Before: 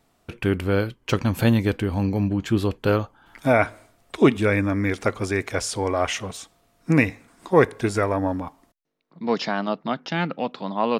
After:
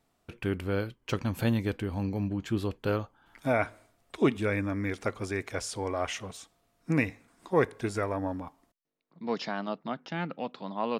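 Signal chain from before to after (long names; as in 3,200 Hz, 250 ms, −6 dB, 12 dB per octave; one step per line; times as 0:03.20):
0:09.74–0:10.29: dynamic equaliser 4,500 Hz, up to −5 dB, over −42 dBFS, Q 0.87
level −8.5 dB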